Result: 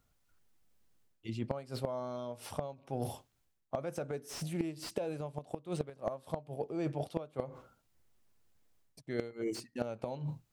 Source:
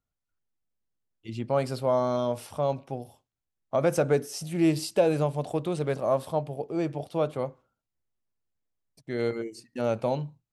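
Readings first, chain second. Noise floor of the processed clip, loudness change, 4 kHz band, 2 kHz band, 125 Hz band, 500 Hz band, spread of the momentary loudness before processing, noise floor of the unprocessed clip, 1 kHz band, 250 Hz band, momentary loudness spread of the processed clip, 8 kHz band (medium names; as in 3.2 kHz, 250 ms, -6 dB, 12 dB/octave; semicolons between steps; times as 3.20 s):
-76 dBFS, -11.5 dB, -8.0 dB, -11.0 dB, -9.0 dB, -12.0 dB, 11 LU, under -85 dBFS, -11.5 dB, -10.0 dB, 5 LU, -8.5 dB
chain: inverted gate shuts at -18 dBFS, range -25 dB; reverse; compression 8:1, threshold -46 dBFS, peak gain reduction 21 dB; reverse; slew-rate limiter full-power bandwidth 10 Hz; trim +12.5 dB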